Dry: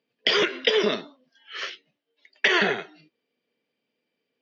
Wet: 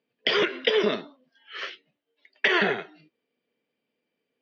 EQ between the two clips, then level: air absorption 150 m; 0.0 dB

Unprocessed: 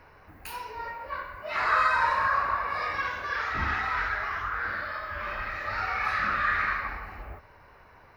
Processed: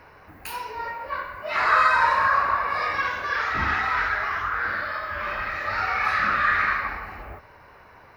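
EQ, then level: low shelf 61 Hz -9 dB; +5.0 dB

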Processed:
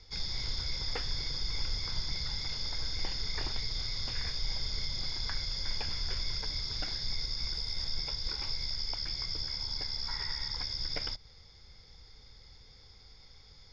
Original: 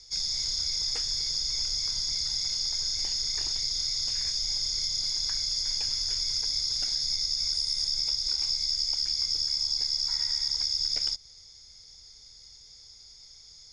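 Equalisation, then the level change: air absorption 370 m; +8.0 dB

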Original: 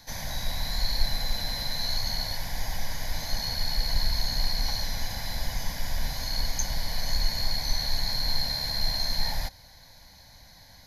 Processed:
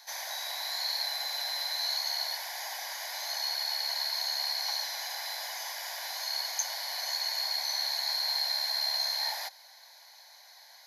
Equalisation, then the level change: steep high-pass 630 Hz 36 dB/oct; 0.0 dB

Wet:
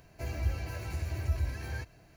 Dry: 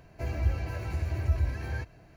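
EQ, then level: high shelf 3700 Hz +10.5 dB; -4.0 dB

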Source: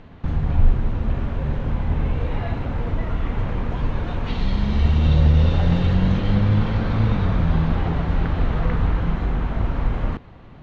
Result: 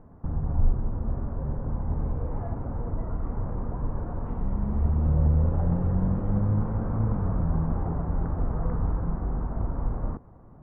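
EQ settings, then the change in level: LPF 1200 Hz 24 dB/oct; -6.5 dB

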